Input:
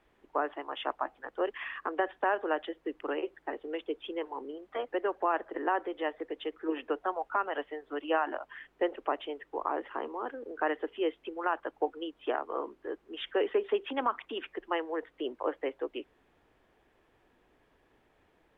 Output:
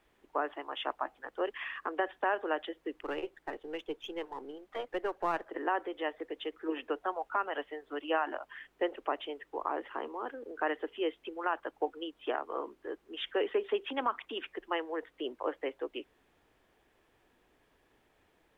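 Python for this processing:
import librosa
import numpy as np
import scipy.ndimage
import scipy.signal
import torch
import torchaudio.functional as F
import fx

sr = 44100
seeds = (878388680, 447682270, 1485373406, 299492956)

y = fx.halfwave_gain(x, sr, db=-3.0, at=(3.02, 5.47))
y = fx.high_shelf(y, sr, hz=3400.0, db=8.0)
y = y * librosa.db_to_amplitude(-2.5)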